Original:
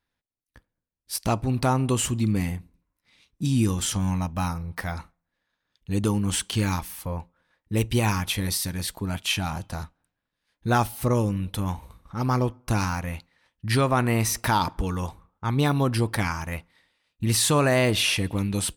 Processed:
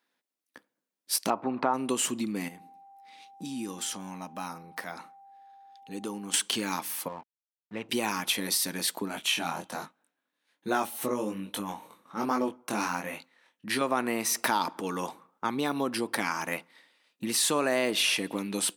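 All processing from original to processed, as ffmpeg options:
-filter_complex "[0:a]asettb=1/sr,asplit=3[s0][s1][s2];[s0]atrim=end=1.304[s3];[s1]atrim=start=1.3:end=1.74,asetpts=PTS-STARTPTS,afade=t=in:d=0.004:c=qsin,afade=t=out:st=0.436:d=0.004:c=qsin,lowpass=2100,equalizer=f=1000:t=o:w=1.6:g=9,acompressor=threshold=0.0891:ratio=1.5:attack=3.2:release=140:knee=1:detection=peak[s4];[s2]atrim=start=1.736[s5];[s3][s4]acrossfade=d=0.004:c1=hsin:c2=qsin[s6];[s6][s5]acrossfade=d=0.004:c1=qsin:c2=hsin,asettb=1/sr,asplit=3[s7][s8][s9];[s7]atrim=end=2.484[s10];[s8]atrim=start=2.48:end=6.34,asetpts=PTS-STARTPTS,afade=t=in:d=0.004:c=qsin,afade=t=out:st=3.856:d=0.004:c=qsin,acompressor=threshold=0.00708:ratio=2:attack=3.2:release=140:knee=1:detection=peak,aeval=exprs='val(0)+0.00178*sin(2*PI*790*n/s)':c=same[s11];[s9]atrim=start=6.336[s12];[s10][s11]acrossfade=d=0.004:c1=hsin:c2=qsin[s13];[s13][s12]acrossfade=d=0.004:c1=qsin:c2=hsin,asettb=1/sr,asplit=3[s14][s15][s16];[s14]atrim=end=7.084[s17];[s15]atrim=start=7.08:end=7.89,asetpts=PTS-STARTPTS,afade=t=in:d=0.004:c=qsin,afade=t=out:st=0.806:d=0.004:c=qsin,lowpass=1700,equalizer=f=340:w=0.58:g=-14,aeval=exprs='sgn(val(0))*max(abs(val(0))-0.00266,0)':c=same[s18];[s16]atrim=start=7.886[s19];[s17][s18]acrossfade=d=0.004:c1=hsin:c2=qsin[s20];[s20][s19]acrossfade=d=0.004:c1=qsin:c2=hsin,asettb=1/sr,asplit=3[s21][s22][s23];[s21]atrim=end=9.084[s24];[s22]atrim=start=9.08:end=13.81,asetpts=PTS-STARTPTS,afade=t=in:d=0.004:c=qsin,afade=t=out:st=4.726:d=0.004:c=qsin,equalizer=f=4900:w=7.9:g=-7.5,flanger=delay=19.5:depth=4.4:speed=1.2[s25];[s23]atrim=start=13.806[s26];[s24][s25]acrossfade=d=0.004:c1=hsin:c2=qsin[s27];[s27][s26]acrossfade=d=0.004:c1=qsin:c2=hsin,acompressor=threshold=0.0398:ratio=4,highpass=f=230:w=0.5412,highpass=f=230:w=1.3066,volume=1.68"

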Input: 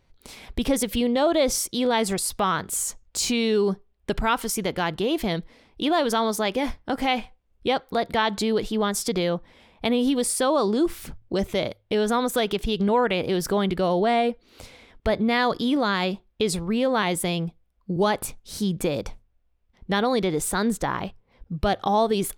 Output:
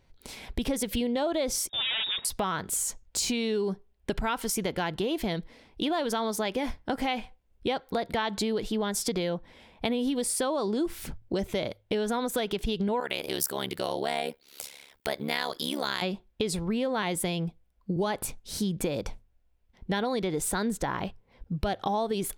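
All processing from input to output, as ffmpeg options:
-filter_complex "[0:a]asettb=1/sr,asplit=3[s0][s1][s2];[s0]atrim=end=1.694[s3];[s1]atrim=start=1.69:end=2.25,asetpts=PTS-STARTPTS,afade=t=in:d=0.004:c=qsin,afade=t=out:st=0.556:d=0.004:c=qsin,aeval=exprs='0.075*(abs(mod(val(0)/0.075+3,4)-2)-1)':c=same,lowpass=f=3200:t=q:w=0.5098,lowpass=f=3200:t=q:w=0.6013,lowpass=f=3200:t=q:w=0.9,lowpass=f=3200:t=q:w=2.563,afreqshift=-3800[s4];[s2]atrim=start=2.246[s5];[s3][s4]acrossfade=d=0.004:c1=hsin:c2=qsin[s6];[s6][s5]acrossfade=d=0.004:c1=qsin:c2=hsin,asettb=1/sr,asplit=3[s7][s8][s9];[s7]atrim=end=13.004[s10];[s8]atrim=start=13:end=16.02,asetpts=PTS-STARTPTS,afade=t=in:d=0.004:c=qsin,afade=t=out:st=3.016:d=0.004:c=qsin,aemphasis=mode=production:type=riaa,tremolo=f=70:d=0.974[s11];[s9]atrim=start=16.016[s12];[s10][s11]acrossfade=d=0.004:c1=hsin:c2=qsin[s13];[s13][s12]acrossfade=d=0.004:c1=qsin:c2=hsin,bandreject=f=1200:w=12,acompressor=threshold=0.0501:ratio=4"

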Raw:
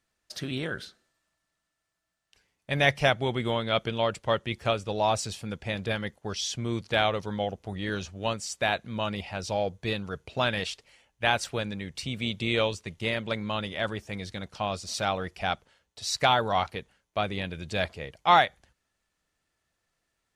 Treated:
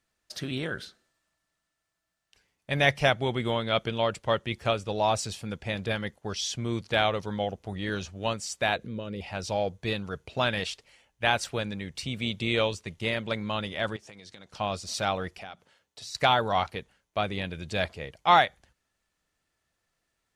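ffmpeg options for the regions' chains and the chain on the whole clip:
-filter_complex "[0:a]asettb=1/sr,asplit=3[s0][s1][s2];[s0]atrim=end=8.764[s3];[s1]atrim=start=8.76:end=9.21,asetpts=PTS-STARTPTS,afade=t=in:d=0.004:c=qsin,afade=t=out:st=0.446:d=0.004:c=qsin,acompressor=threshold=0.00447:ratio=2:attack=3.2:release=140:knee=1:detection=peak,lowshelf=f=610:t=q:w=3:g=7[s4];[s2]atrim=start=9.206[s5];[s3][s4]acrossfade=d=0.004:c1=hsin:c2=qsin[s6];[s6][s5]acrossfade=d=0.004:c1=qsin:c2=hsin,asettb=1/sr,asplit=3[s7][s8][s9];[s7]atrim=end=13.964[s10];[s8]atrim=start=13.96:end=14.52,asetpts=PTS-STARTPTS,afade=t=in:d=0.004:c=qsin,afade=t=out:st=0.556:d=0.004:c=qsin,highpass=100,lowpass=7400,bass=f=250:g=-5,treble=f=4000:g=6,acompressor=threshold=0.00708:ratio=12:attack=3.2:release=140:knee=1:detection=peak[s11];[s9]atrim=start=14.516[s12];[s10][s11]acrossfade=d=0.004:c1=hsin:c2=qsin[s13];[s13][s12]acrossfade=d=0.004:c1=qsin:c2=hsin,asettb=1/sr,asplit=3[s14][s15][s16];[s14]atrim=end=15.384[s17];[s15]atrim=start=15.38:end=16.15,asetpts=PTS-STARTPTS,afade=t=in:d=0.004:c=qsin,afade=t=out:st=0.766:d=0.004:c=qsin,highpass=110,acompressor=threshold=0.01:ratio=4:attack=3.2:release=140:knee=1:detection=peak,bandreject=f=60:t=h:w=6,bandreject=f=120:t=h:w=6,bandreject=f=180:t=h:w=6,bandreject=f=240:t=h:w=6[s18];[s16]atrim=start=16.146[s19];[s17][s18]acrossfade=d=0.004:c1=hsin:c2=qsin[s20];[s20][s19]acrossfade=d=0.004:c1=qsin:c2=hsin"

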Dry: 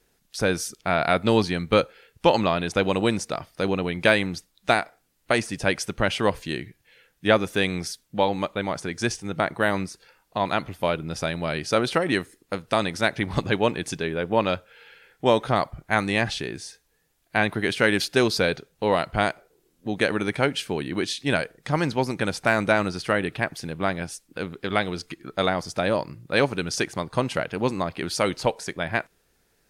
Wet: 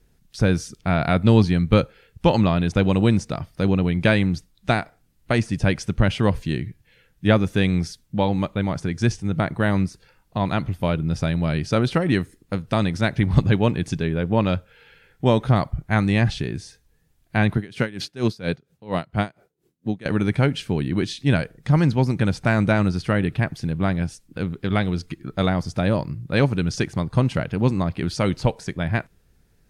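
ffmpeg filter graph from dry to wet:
-filter_complex "[0:a]asettb=1/sr,asplit=3[s0][s1][s2];[s0]atrim=end=17.574[s3];[s1]atrim=start=17.57:end=20.06,asetpts=PTS-STARTPTS,afade=t=in:d=0.004:c=qsin,afade=t=out:st=2.486:d=0.004:c=qsin,highpass=110,aeval=exprs='val(0)*pow(10,-21*(0.5-0.5*cos(2*PI*4.3*n/s))/20)':c=same[s4];[s2]atrim=start=20.056[s5];[s3][s4]acrossfade=d=0.004:c1=hsin:c2=qsin[s6];[s6][s5]acrossfade=d=0.004:c1=qsin:c2=hsin,acrossover=split=8400[s7][s8];[s8]acompressor=threshold=0.00316:ratio=4:attack=1:release=60[s9];[s7][s9]amix=inputs=2:normalize=0,bass=f=250:g=15,treble=f=4000:g=-1,volume=0.794"

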